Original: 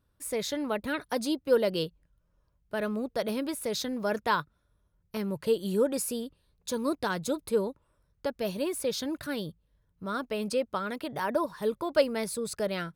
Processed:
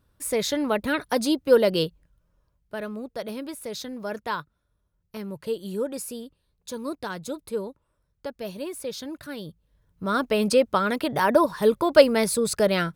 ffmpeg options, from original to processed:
-af "volume=18.5dB,afade=t=out:st=1.84:d=1.03:silence=0.354813,afade=t=in:st=9.39:d=0.89:silence=0.251189"

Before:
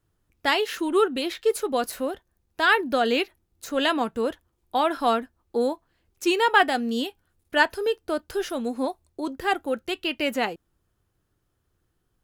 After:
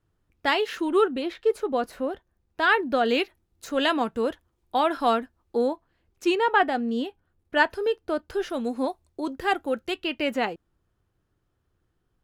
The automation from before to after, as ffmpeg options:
-af "asetnsamples=n=441:p=0,asendcmd='1.11 lowpass f 1500;2.11 lowpass f 2700;3.09 lowpass f 6400;5.61 lowpass f 2900;6.35 lowpass f 1400;7.55 lowpass f 2900;8.54 lowpass f 6900;9.96 lowpass f 3300',lowpass=f=3.6k:p=1"

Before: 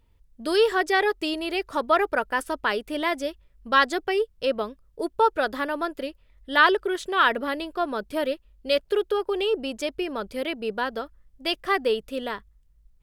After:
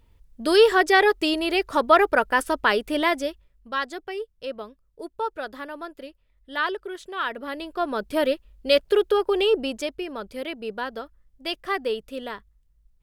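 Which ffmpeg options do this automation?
-af "volume=16.5dB,afade=t=out:st=2.98:d=0.71:silence=0.237137,afade=t=in:st=7.35:d=0.87:silence=0.251189,afade=t=out:st=9.55:d=0.43:silence=0.446684"

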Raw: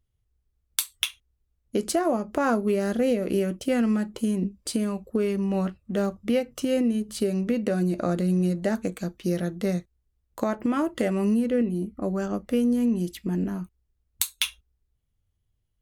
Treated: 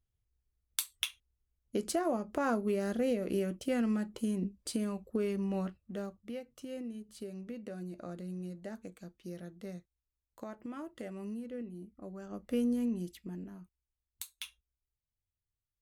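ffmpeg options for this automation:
-af "volume=2.5dB,afade=t=out:st=5.46:d=0.75:silence=0.316228,afade=t=in:st=12.26:d=0.34:silence=0.298538,afade=t=out:st=12.6:d=0.85:silence=0.298538"

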